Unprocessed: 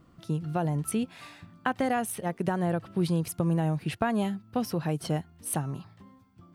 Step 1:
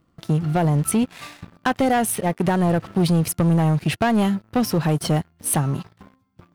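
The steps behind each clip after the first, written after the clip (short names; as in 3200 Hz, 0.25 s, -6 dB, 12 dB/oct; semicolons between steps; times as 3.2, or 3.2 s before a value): sample leveller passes 3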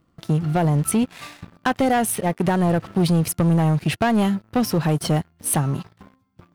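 nothing audible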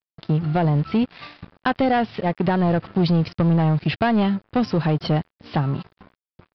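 crossover distortion -51 dBFS; downsampling 11025 Hz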